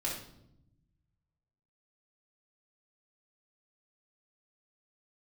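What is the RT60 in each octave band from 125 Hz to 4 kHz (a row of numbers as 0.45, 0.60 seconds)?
2.0, 1.4, 0.90, 0.65, 0.55, 0.60 seconds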